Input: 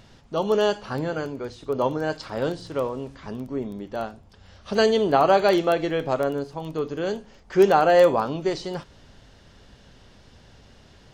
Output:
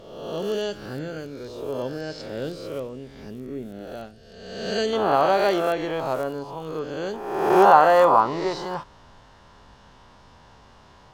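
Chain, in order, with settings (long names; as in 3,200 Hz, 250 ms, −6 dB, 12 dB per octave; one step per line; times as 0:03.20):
peak hold with a rise ahead of every peak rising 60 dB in 1.13 s
parametric band 1,000 Hz −12.5 dB 0.87 octaves, from 0:04.93 +2.5 dB, from 0:07.14 +14 dB
level −5 dB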